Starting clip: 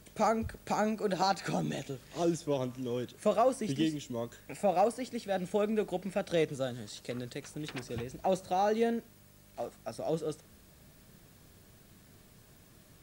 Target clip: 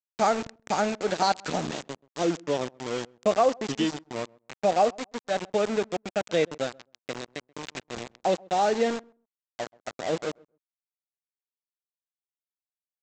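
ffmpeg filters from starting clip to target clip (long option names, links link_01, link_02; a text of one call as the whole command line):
ffmpeg -i in.wav -filter_complex "[0:a]lowshelf=frequency=190:gain=-4,aresample=16000,aeval=exprs='val(0)*gte(abs(val(0)),0.0178)':channel_layout=same,aresample=44100,lowshelf=frequency=86:gain=-11.5,asplit=2[link_01][link_02];[link_02]adelay=131,lowpass=frequency=810:poles=1,volume=-24dB,asplit=2[link_03][link_04];[link_04]adelay=131,lowpass=frequency=810:poles=1,volume=0.17[link_05];[link_01][link_03][link_05]amix=inputs=3:normalize=0,volume=6dB" out.wav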